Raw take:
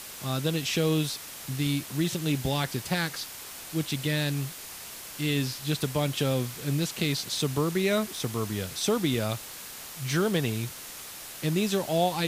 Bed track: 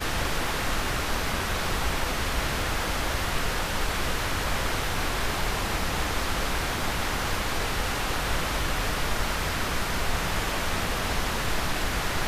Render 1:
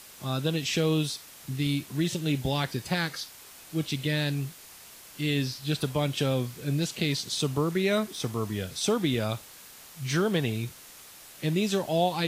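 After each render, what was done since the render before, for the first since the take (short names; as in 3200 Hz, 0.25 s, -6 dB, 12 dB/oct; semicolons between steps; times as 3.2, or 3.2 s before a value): noise print and reduce 7 dB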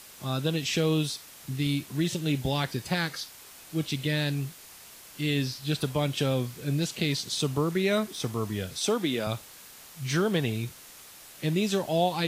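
8.78–9.27 HPF 210 Hz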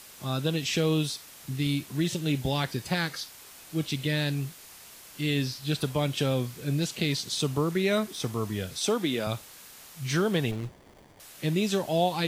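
10.51–11.2 running maximum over 33 samples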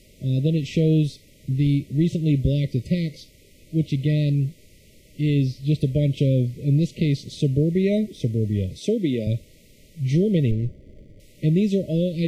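FFT band-reject 640–1900 Hz; tilt -3.5 dB/oct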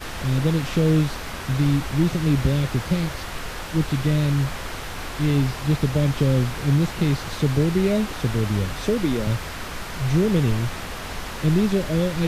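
add bed track -4.5 dB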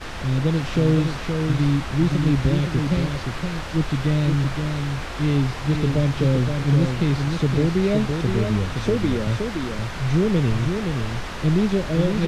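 air absorption 55 m; echo 0.519 s -5.5 dB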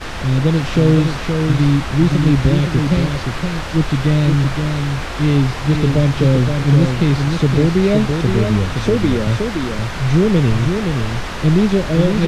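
gain +6 dB; limiter -2 dBFS, peak gain reduction 1 dB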